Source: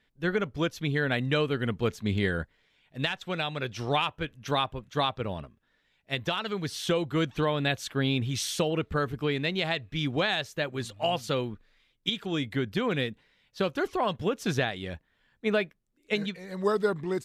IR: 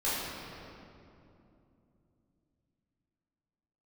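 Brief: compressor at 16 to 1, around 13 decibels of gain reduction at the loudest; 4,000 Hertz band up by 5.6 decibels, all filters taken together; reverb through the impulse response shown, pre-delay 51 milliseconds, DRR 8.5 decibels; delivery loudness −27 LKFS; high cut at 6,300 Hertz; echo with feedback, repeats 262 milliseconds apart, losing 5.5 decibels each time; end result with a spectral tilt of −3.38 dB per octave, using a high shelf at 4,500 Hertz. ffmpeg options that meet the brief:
-filter_complex "[0:a]lowpass=6300,equalizer=frequency=4000:width_type=o:gain=9,highshelf=frequency=4500:gain=-3.5,acompressor=threshold=-33dB:ratio=16,aecho=1:1:262|524|786|1048|1310|1572|1834:0.531|0.281|0.149|0.079|0.0419|0.0222|0.0118,asplit=2[link_01][link_02];[1:a]atrim=start_sample=2205,adelay=51[link_03];[link_02][link_03]afir=irnorm=-1:irlink=0,volume=-18dB[link_04];[link_01][link_04]amix=inputs=2:normalize=0,volume=9.5dB"

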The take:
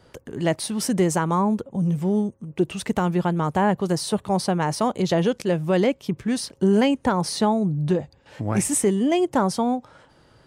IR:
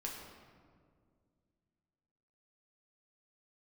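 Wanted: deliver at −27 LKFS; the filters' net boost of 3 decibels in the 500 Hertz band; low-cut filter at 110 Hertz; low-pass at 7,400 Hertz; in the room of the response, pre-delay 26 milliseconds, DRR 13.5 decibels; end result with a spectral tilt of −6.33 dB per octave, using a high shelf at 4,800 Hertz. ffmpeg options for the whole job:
-filter_complex "[0:a]highpass=110,lowpass=7400,equalizer=frequency=500:width_type=o:gain=4,highshelf=frequency=4800:gain=-4.5,asplit=2[link_01][link_02];[1:a]atrim=start_sample=2205,adelay=26[link_03];[link_02][link_03]afir=irnorm=-1:irlink=0,volume=-13dB[link_04];[link_01][link_04]amix=inputs=2:normalize=0,volume=-5.5dB"

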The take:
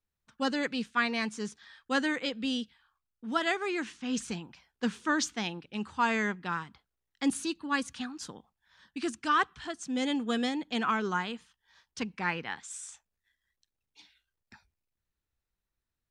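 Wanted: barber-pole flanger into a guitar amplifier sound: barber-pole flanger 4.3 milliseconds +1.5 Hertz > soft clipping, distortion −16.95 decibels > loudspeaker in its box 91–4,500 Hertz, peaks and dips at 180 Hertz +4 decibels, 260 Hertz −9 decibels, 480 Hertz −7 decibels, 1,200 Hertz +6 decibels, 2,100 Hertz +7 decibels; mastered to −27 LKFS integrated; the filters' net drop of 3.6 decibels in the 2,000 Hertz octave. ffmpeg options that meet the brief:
ffmpeg -i in.wav -filter_complex "[0:a]equalizer=frequency=2000:width_type=o:gain=-9,asplit=2[link_01][link_02];[link_02]adelay=4.3,afreqshift=1.5[link_03];[link_01][link_03]amix=inputs=2:normalize=1,asoftclip=threshold=-26dB,highpass=91,equalizer=frequency=180:width_type=q:width=4:gain=4,equalizer=frequency=260:width_type=q:width=4:gain=-9,equalizer=frequency=480:width_type=q:width=4:gain=-7,equalizer=frequency=1200:width_type=q:width=4:gain=6,equalizer=frequency=2100:width_type=q:width=4:gain=7,lowpass=frequency=4500:width=0.5412,lowpass=frequency=4500:width=1.3066,volume=11.5dB" out.wav

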